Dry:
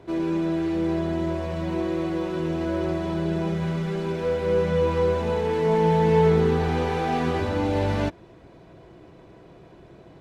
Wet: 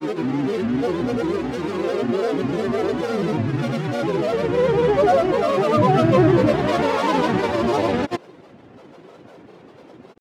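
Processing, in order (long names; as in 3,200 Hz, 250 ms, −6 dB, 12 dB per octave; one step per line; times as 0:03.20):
high-pass filter 190 Hz 12 dB per octave
notch filter 660 Hz, Q 12
backwards echo 317 ms −11 dB
granular cloud, pitch spread up and down by 7 semitones
pitch vibrato 8.4 Hz 53 cents
level +6.5 dB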